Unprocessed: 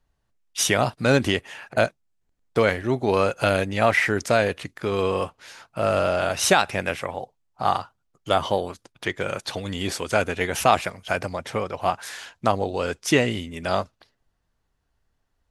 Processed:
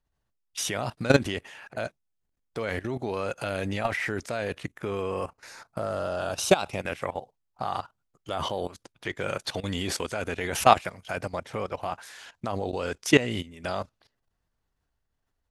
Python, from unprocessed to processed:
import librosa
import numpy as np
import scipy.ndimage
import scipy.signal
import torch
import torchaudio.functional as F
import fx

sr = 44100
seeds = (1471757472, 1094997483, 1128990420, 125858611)

y = fx.peak_eq(x, sr, hz=fx.line((4.64, 4900.0), (6.8, 1600.0)), db=-14.0, octaves=0.37, at=(4.64, 6.8), fade=0.02)
y = fx.level_steps(y, sr, step_db=16)
y = F.gain(torch.from_numpy(y), 2.0).numpy()